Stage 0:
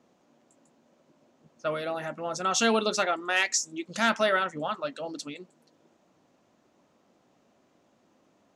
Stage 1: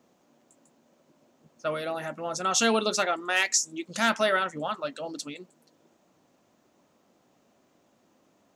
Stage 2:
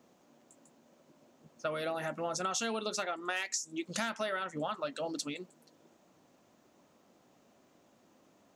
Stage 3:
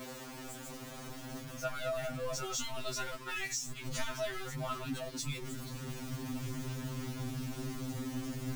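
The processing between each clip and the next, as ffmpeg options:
-af "highshelf=f=9900:g=11.5"
-af "acompressor=threshold=0.0282:ratio=16"
-af "aeval=exprs='val(0)+0.5*0.0168*sgn(val(0))':c=same,asubboost=boost=11:cutoff=170,afftfilt=real='re*2.45*eq(mod(b,6),0)':imag='im*2.45*eq(mod(b,6),0)':win_size=2048:overlap=0.75,volume=0.794"

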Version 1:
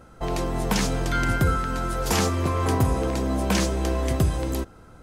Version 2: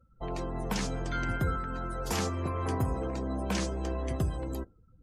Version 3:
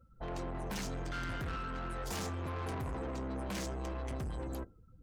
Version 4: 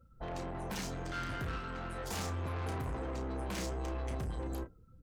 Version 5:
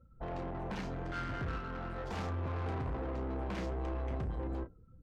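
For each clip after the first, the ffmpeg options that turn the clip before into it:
-af "afftdn=nr=27:nf=-39,volume=0.376"
-af "asoftclip=type=tanh:threshold=0.0141,volume=1.12"
-filter_complex "[0:a]asplit=2[s0][s1];[s1]adelay=33,volume=0.422[s2];[s0][s2]amix=inputs=2:normalize=0"
-af "adynamicsmooth=sensitivity=5:basefreq=1900,volume=1.12"

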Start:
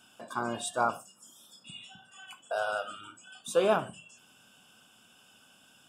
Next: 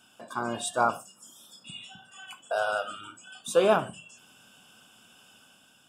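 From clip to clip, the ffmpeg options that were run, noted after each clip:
-af "dynaudnorm=f=110:g=9:m=1.5"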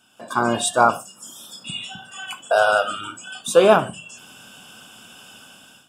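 -af "dynaudnorm=f=160:g=3:m=3.98"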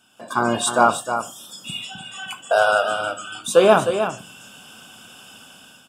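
-af "aecho=1:1:310:0.376"

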